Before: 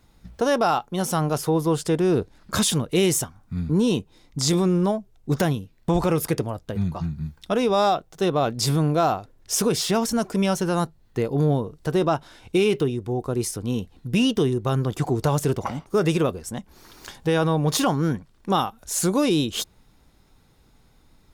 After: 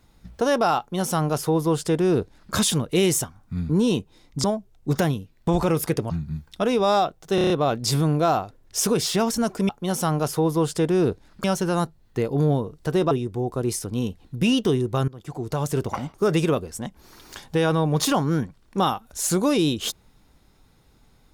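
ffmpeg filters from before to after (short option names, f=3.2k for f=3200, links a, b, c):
-filter_complex "[0:a]asplit=12[a][b][c][d][e][f][g][h][i][j][k][l];[a]atrim=end=4.442[m];[b]atrim=start=4.848:end=6.512[n];[c]atrim=start=6.998:end=8.282[o];[d]atrim=start=8.248:end=8.282[p];[e]atrim=start=8.248:end=8.282[q];[f]atrim=start=8.248:end=8.282[r];[g]atrim=start=8.248:end=8.282[s];[h]atrim=start=8.248:end=10.442[t];[i]atrim=start=0.788:end=2.542[u];[j]atrim=start=10.438:end=12.112[v];[k]atrim=start=12.828:end=14.8,asetpts=PTS-STARTPTS,afade=t=out:st=1.968:d=0.004:c=hsin:silence=0.0749894[w];[l]atrim=start=14.8,asetpts=PTS-STARTPTS,afade=t=in:d=0.86:silence=0.0749894[x];[m][n]acrossfade=d=0.004:c1=hsin:c2=hsin[y];[y][o]acrossfade=d=0.004:c1=hsin:c2=hsin[z];[z][p]acrossfade=d=0.004:c1=hsin:c2=hsin[aa];[aa][q]acrossfade=d=0.004:c1=hsin:c2=hsin[ab];[ab][r]acrossfade=d=0.004:c1=hsin:c2=hsin[ac];[ac][s]acrossfade=d=0.004:c1=hsin:c2=hsin[ad];[ad][t]acrossfade=d=0.004:c1=hsin:c2=hsin[ae];[ae][u]acrossfade=d=0.004:c1=hsin:c2=hsin[af];[af][v]acrossfade=d=0.004:c1=hsin:c2=hsin[ag];[w][x]concat=n=2:v=0:a=1[ah];[ag][ah]acrossfade=d=0.004:c1=hsin:c2=hsin"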